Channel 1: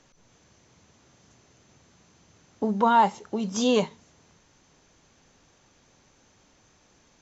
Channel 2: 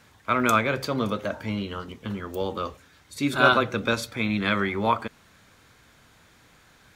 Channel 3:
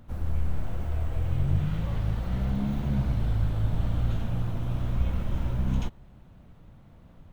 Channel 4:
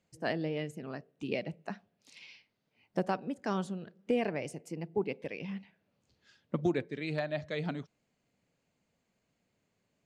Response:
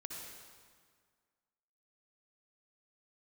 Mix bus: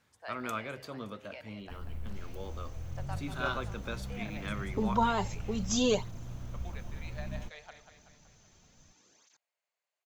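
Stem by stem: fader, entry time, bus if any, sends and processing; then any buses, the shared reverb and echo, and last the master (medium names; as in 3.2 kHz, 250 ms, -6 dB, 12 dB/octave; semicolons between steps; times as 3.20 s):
-4.5 dB, 2.15 s, no send, no echo send, treble shelf 3.5 kHz +10 dB; cancelling through-zero flanger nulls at 0.63 Hz, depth 4.3 ms
-15.5 dB, 0.00 s, no send, no echo send, none
-13.0 dB, 1.60 s, no send, no echo send, treble shelf 8.5 kHz +8 dB
-9.0 dB, 0.00 s, no send, echo send -9 dB, high-pass 630 Hz 24 dB/octave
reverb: none
echo: feedback delay 189 ms, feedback 56%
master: none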